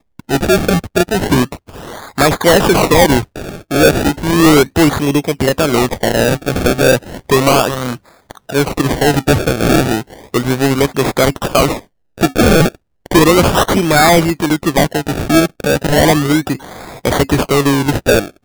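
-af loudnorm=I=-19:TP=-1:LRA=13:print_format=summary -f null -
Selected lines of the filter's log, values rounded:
Input Integrated:    -13.1 LUFS
Input True Peak:      -0.7 dBTP
Input LRA:             2.7 LU
Input Threshold:     -23.5 LUFS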